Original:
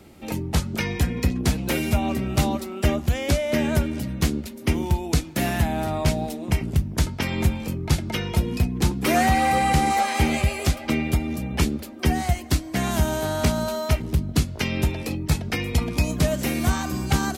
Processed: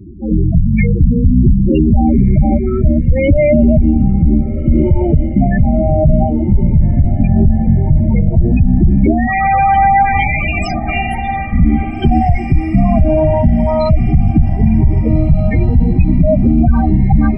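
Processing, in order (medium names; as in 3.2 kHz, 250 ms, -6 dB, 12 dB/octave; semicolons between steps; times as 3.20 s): octave divider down 2 oct, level -3 dB; 9.27–11.53 s: high-pass 690 Hz 24 dB/octave; loudest bins only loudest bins 8; echo that smears into a reverb 1742 ms, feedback 49%, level -14 dB; loudness maximiser +18.5 dB; Shepard-style phaser rising 0.86 Hz; trim -1 dB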